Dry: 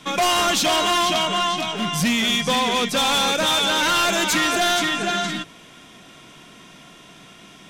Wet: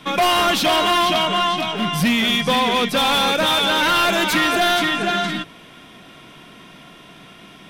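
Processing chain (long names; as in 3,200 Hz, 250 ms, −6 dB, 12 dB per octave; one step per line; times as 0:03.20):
parametric band 6,900 Hz −10.5 dB 0.8 octaves
level +3 dB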